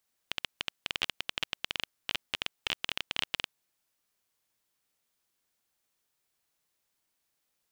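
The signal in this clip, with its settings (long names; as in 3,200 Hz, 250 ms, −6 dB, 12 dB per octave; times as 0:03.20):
Geiger counter clicks 16 per second −12 dBFS 3.26 s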